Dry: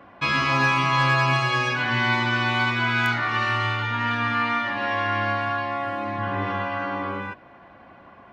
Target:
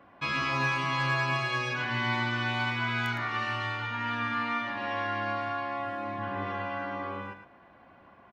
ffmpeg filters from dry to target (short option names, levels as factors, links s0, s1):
-af "aecho=1:1:111:0.335,volume=0.398"